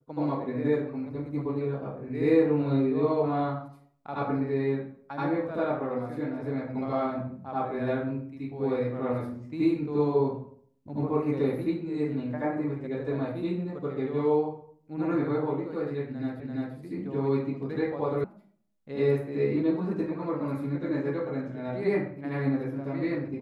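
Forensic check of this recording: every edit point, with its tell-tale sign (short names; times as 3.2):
16.4 repeat of the last 0.34 s
18.24 sound cut off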